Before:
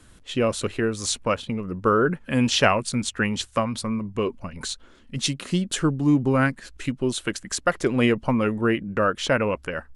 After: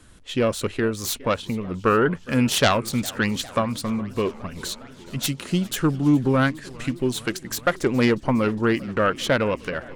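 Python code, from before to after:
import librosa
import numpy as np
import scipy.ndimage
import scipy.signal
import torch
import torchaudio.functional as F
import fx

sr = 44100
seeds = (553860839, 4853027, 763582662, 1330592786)

y = fx.self_delay(x, sr, depth_ms=0.18)
y = fx.echo_warbled(y, sr, ms=409, feedback_pct=79, rate_hz=2.8, cents=189, wet_db=-22.0)
y = y * librosa.db_to_amplitude(1.0)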